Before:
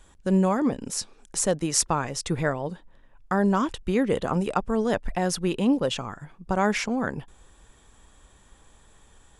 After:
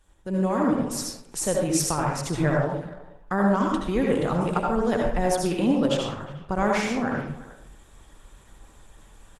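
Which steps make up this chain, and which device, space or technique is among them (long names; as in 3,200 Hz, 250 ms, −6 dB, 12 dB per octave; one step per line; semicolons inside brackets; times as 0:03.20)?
speakerphone in a meeting room (convolution reverb RT60 0.60 s, pre-delay 67 ms, DRR −0.5 dB; far-end echo of a speakerphone 360 ms, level −18 dB; automatic gain control gain up to 9.5 dB; level −8 dB; Opus 20 kbit/s 48,000 Hz)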